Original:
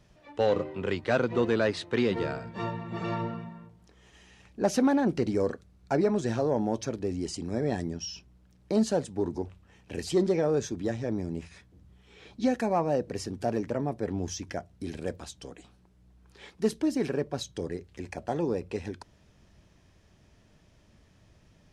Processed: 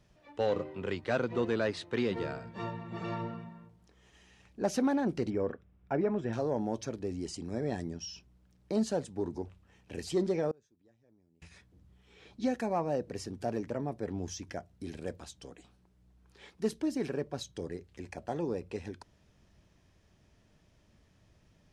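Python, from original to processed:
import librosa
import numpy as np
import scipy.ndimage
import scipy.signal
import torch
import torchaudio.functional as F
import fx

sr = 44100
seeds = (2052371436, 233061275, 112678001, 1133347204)

y = fx.savgol(x, sr, points=25, at=(5.3, 6.33))
y = fx.gate_flip(y, sr, shuts_db=-30.0, range_db=-31, at=(10.51, 11.42))
y = F.gain(torch.from_numpy(y), -5.0).numpy()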